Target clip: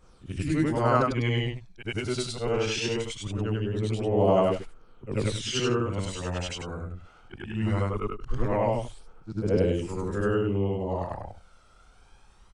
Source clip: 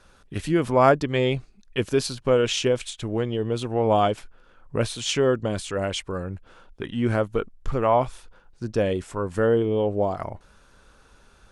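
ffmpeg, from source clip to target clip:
ffmpeg -i in.wav -af "afftfilt=real='re':imag='-im':win_size=8192:overlap=0.75,aphaser=in_gain=1:out_gain=1:delay=1.4:decay=0.49:speed=0.23:type=triangular,asetrate=40517,aresample=44100" out.wav

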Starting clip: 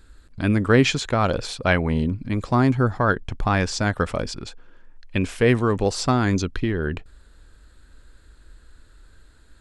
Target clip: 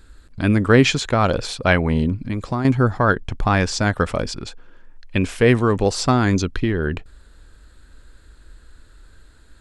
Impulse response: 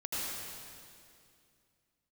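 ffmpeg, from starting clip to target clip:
-filter_complex "[0:a]asettb=1/sr,asplit=3[link_01][link_02][link_03];[link_01]atrim=end=2.244[link_04];[link_02]atrim=start=2.24:end=2.65,asetpts=PTS-STARTPTS,afade=type=in:duration=0.004:curve=qsin,afade=type=out:start_time=0.406:duration=0.004:curve=qsin,acompressor=threshold=-25dB:ratio=3[link_05];[link_03]atrim=start=2.646[link_06];[link_04][link_05]acrossfade=duration=0.004:curve1=hsin:curve2=qsin[link_07];[link_07][link_06]acrossfade=duration=0.004:curve1=qsin:curve2=hsin,volume=3dB"

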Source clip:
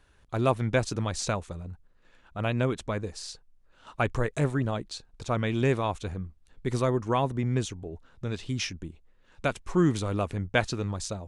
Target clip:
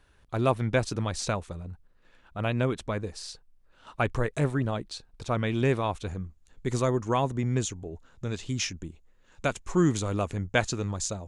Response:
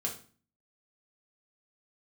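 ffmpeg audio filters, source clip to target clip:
-af "asetnsamples=nb_out_samples=441:pad=0,asendcmd='6.08 equalizer g 9.5',equalizer=frequency=6900:width_type=o:width=0.31:gain=-2.5"

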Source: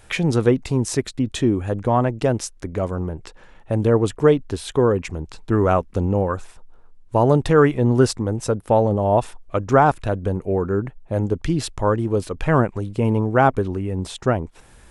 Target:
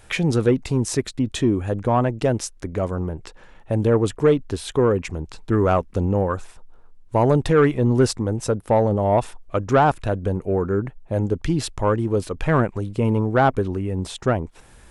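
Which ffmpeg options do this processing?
ffmpeg -i in.wav -af "asoftclip=type=tanh:threshold=-6.5dB" out.wav

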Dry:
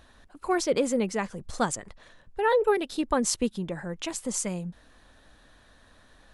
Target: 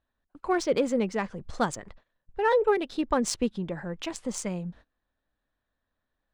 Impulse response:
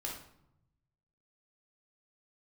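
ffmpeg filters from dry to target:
-af "adynamicsmooth=sensitivity=3:basefreq=4200,agate=range=-25dB:threshold=-48dB:ratio=16:detection=peak"

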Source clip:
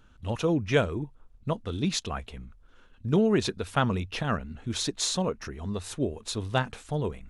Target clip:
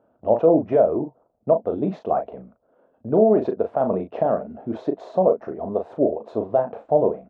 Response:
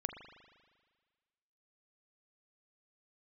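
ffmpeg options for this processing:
-filter_complex "[0:a]agate=range=-6dB:threshold=-47dB:ratio=16:detection=peak,highpass=250,alimiter=limit=-20dB:level=0:latency=1:release=127,lowpass=frequency=650:width_type=q:width=4.9,asplit=2[link_01][link_02];[link_02]adelay=37,volume=-7dB[link_03];[link_01][link_03]amix=inputs=2:normalize=0,volume=7.5dB"

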